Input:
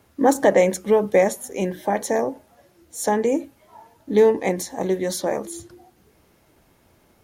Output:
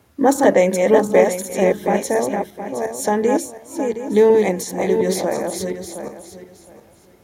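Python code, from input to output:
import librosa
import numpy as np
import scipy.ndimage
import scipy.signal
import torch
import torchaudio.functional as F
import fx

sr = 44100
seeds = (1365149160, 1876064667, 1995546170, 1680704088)

y = fx.reverse_delay_fb(x, sr, ms=358, feedback_pct=44, wet_db=-3.5)
y = scipy.signal.sosfilt(scipy.signal.butter(2, 56.0, 'highpass', fs=sr, output='sos'), y)
y = fx.low_shelf(y, sr, hz=140.0, db=3.5)
y = y * librosa.db_to_amplitude(1.5)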